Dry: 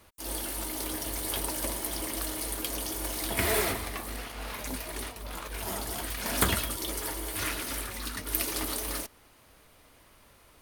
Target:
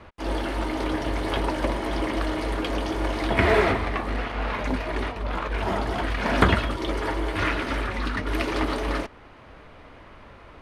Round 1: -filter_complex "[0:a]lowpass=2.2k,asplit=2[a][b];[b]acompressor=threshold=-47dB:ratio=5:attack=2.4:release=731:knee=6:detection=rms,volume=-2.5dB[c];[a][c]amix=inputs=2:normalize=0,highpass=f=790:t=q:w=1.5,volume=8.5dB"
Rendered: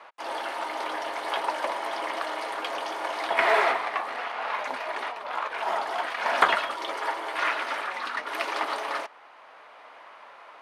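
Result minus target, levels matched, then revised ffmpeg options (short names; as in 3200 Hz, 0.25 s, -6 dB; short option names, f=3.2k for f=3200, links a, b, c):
compressor: peak gain reduction +8.5 dB; 1000 Hz band +4.0 dB
-filter_complex "[0:a]lowpass=2.2k,asplit=2[a][b];[b]acompressor=threshold=-36.5dB:ratio=5:attack=2.4:release=731:knee=6:detection=rms,volume=-2.5dB[c];[a][c]amix=inputs=2:normalize=0,volume=8.5dB"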